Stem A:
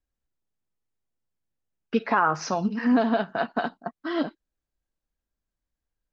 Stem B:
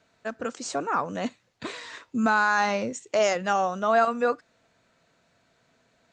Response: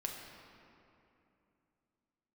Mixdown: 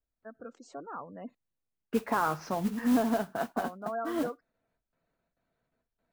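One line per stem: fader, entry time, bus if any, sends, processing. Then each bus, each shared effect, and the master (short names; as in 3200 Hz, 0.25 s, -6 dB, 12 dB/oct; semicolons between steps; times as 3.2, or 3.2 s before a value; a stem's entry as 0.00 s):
-4.5 dB, 0.00 s, no send, modulation noise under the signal 10 dB
-12.5 dB, 0.00 s, muted 1.35–3.56, no send, spectral gate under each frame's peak -20 dB strong; gate with hold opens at -56 dBFS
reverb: off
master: high shelf 2100 Hz -11.5 dB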